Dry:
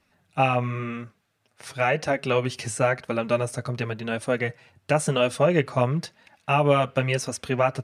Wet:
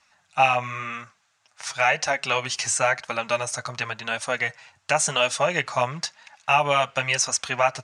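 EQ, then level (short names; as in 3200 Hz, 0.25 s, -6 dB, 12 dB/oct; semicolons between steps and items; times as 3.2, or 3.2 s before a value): resonant low shelf 590 Hz -13.5 dB, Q 1.5; dynamic EQ 1200 Hz, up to -5 dB, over -36 dBFS, Q 1.9; synth low-pass 6900 Hz, resonance Q 2.8; +4.5 dB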